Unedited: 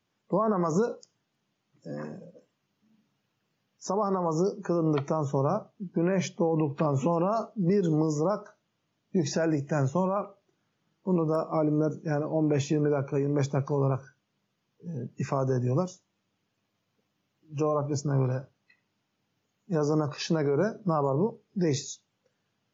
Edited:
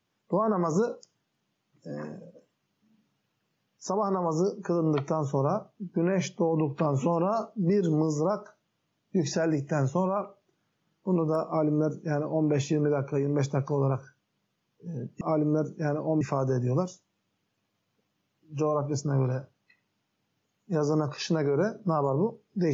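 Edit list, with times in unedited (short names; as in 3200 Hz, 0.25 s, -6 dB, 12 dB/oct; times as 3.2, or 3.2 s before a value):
11.47–12.47 copy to 15.21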